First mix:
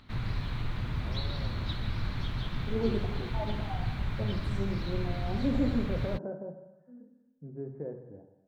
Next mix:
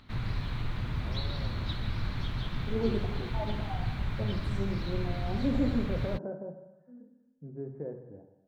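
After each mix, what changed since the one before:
none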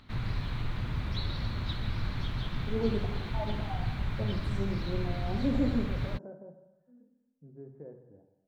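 second voice -8.0 dB

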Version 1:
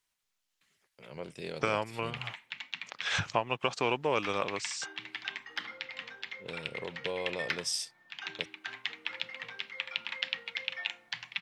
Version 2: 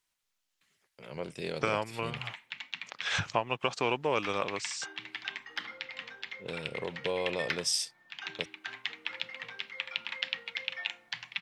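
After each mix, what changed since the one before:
first voice +3.5 dB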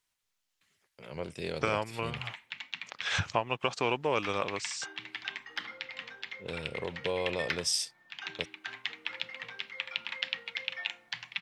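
master: add bell 82 Hz +12 dB 0.33 oct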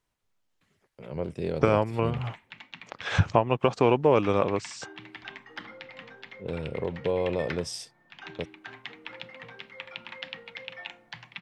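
second voice +4.0 dB; master: add tilt shelf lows +8.5 dB, about 1200 Hz

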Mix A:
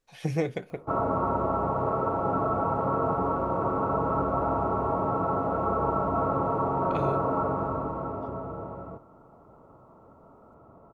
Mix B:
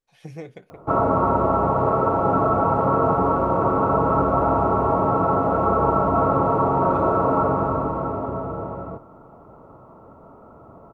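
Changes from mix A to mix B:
speech -9.0 dB; background +7.5 dB

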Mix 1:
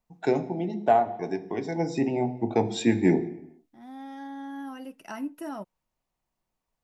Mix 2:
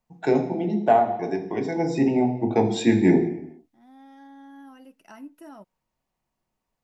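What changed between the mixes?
first voice: send +8.0 dB; second voice -8.0 dB

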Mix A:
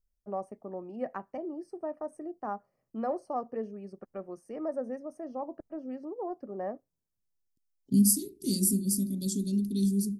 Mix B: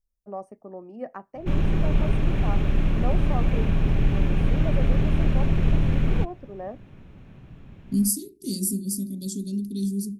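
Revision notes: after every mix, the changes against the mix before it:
background: unmuted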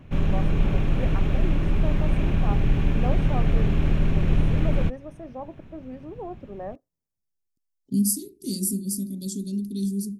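background: entry -1.35 s

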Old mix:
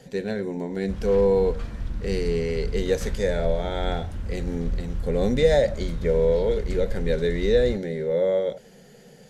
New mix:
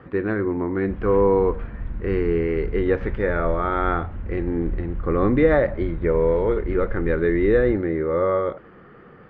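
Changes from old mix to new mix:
speech: remove fixed phaser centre 320 Hz, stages 6; master: add LPF 2400 Hz 24 dB/oct

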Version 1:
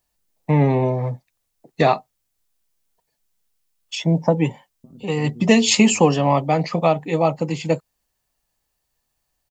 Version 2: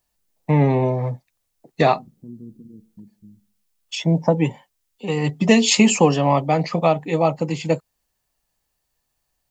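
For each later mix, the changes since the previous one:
second voice: entry -2.95 s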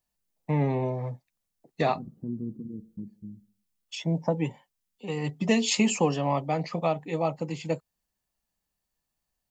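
first voice -9.0 dB; second voice +4.5 dB

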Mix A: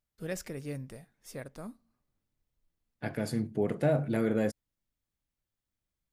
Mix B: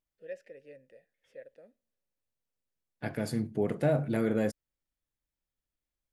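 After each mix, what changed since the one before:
first voice: add vowel filter e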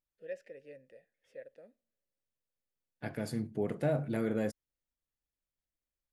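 second voice -4.0 dB

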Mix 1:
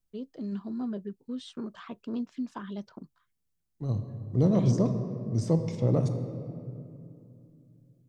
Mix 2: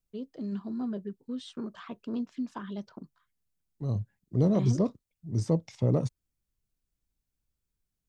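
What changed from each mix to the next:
reverb: off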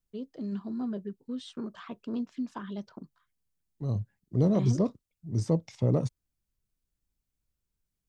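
none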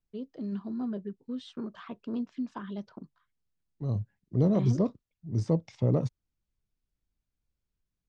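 master: add air absorption 88 m

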